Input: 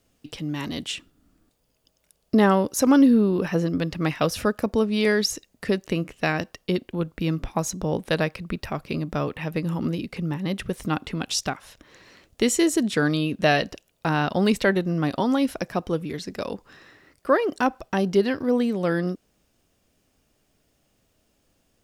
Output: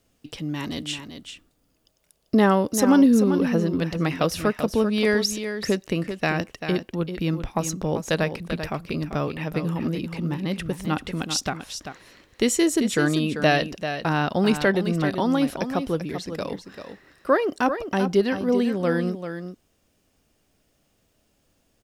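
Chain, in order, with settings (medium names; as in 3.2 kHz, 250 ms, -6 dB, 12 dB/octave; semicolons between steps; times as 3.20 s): delay 391 ms -9 dB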